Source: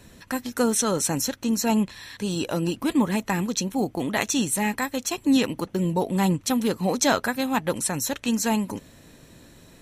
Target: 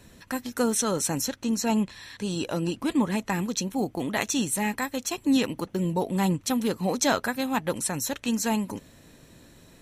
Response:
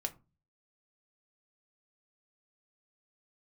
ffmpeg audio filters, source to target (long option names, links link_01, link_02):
-filter_complex "[0:a]asettb=1/sr,asplit=3[link_01][link_02][link_03];[link_01]atrim=end=1.264[link_04];[link_02]atrim=start=1.26:end=3.32,asetpts=PTS-STARTPTS,afade=type=in:duration=0.004:curve=qsin,afade=type=out:start_time=2.056:duration=0.004:curve=qsin,lowpass=11000[link_05];[link_03]atrim=start=3.316[link_06];[link_04][link_05]acrossfade=duration=0.004:curve1=hsin:curve2=qsin[link_07];[link_07][link_06]acrossfade=duration=0.004:curve1=qsin:curve2=hsin,volume=-2.5dB"